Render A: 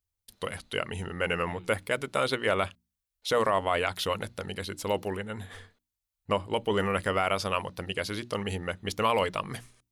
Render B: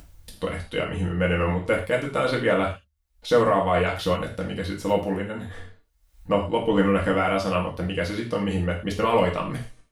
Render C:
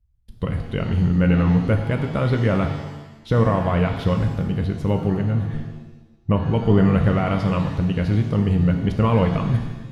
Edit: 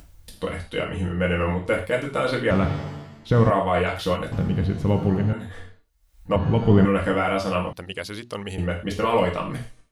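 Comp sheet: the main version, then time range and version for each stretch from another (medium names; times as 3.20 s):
B
2.51–3.50 s: from C
4.32–5.33 s: from C
6.36–6.85 s: from C
7.73–8.58 s: from A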